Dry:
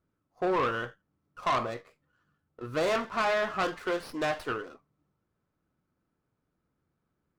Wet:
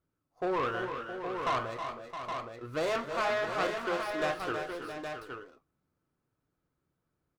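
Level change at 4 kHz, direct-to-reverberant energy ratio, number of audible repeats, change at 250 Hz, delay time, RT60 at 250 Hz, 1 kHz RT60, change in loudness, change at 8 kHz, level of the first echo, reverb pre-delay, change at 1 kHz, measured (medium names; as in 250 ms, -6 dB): -1.5 dB, no reverb, 4, -2.5 dB, 196 ms, no reverb, no reverb, -3.5 dB, -1.5 dB, -18.0 dB, no reverb, -1.5 dB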